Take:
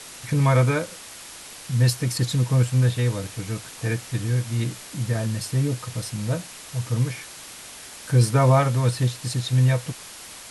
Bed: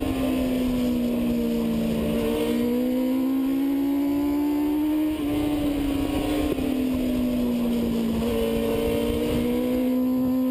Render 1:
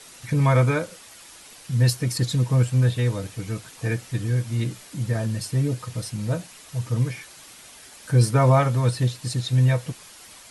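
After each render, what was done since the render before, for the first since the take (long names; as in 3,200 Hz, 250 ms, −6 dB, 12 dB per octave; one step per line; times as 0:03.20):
broadband denoise 7 dB, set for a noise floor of −41 dBFS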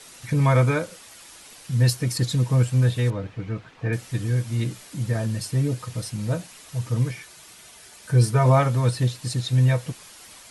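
0:03.10–0:03.93: low-pass filter 2,400 Hz
0:07.11–0:08.46: notch comb filter 270 Hz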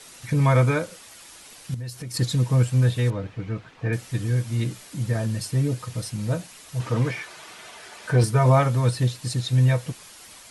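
0:01.74–0:02.14: downward compressor 5 to 1, threshold −32 dBFS
0:06.80–0:08.24: mid-hump overdrive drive 19 dB, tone 1,300 Hz, clips at −8 dBFS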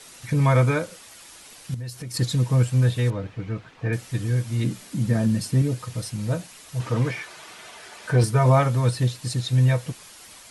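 0:04.64–0:05.62: parametric band 220 Hz +9.5 dB 0.89 octaves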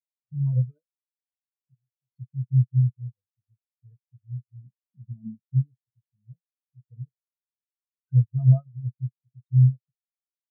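transient designer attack +1 dB, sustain −6 dB
every bin expanded away from the loudest bin 4 to 1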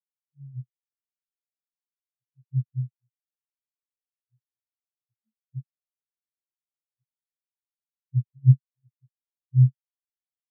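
in parallel at +1 dB: downward compressor, threshold −26 dBFS, peak gain reduction 14.5 dB
on the sum: every bin expanded away from the loudest bin 4 to 1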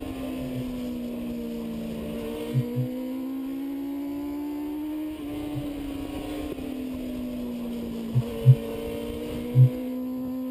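mix in bed −8.5 dB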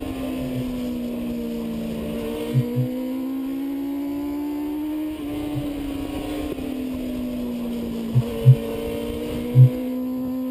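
level +5 dB
brickwall limiter −3 dBFS, peak gain reduction 2.5 dB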